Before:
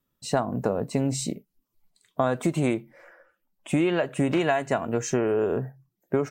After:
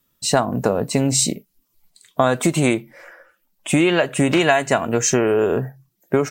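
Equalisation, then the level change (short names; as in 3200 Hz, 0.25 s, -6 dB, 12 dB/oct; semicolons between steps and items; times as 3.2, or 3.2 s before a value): high shelf 2000 Hz +9 dB; +6.0 dB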